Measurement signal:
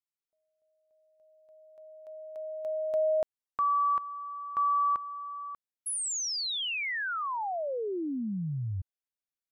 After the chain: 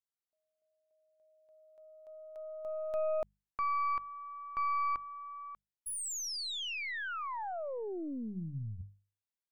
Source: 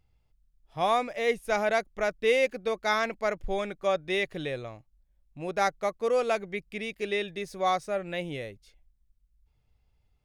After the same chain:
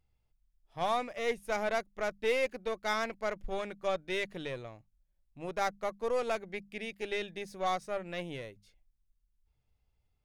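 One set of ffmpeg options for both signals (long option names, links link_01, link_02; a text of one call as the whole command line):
ffmpeg -i in.wav -af "aeval=exprs='0.237*(cos(1*acos(clip(val(0)/0.237,-1,1)))-cos(1*PI/2))+0.0133*(cos(8*acos(clip(val(0)/0.237,-1,1)))-cos(8*PI/2))':channel_layout=same,bandreject=frequency=50:width_type=h:width=6,bandreject=frequency=100:width_type=h:width=6,bandreject=frequency=150:width_type=h:width=6,bandreject=frequency=200:width_type=h:width=6,volume=-6dB" out.wav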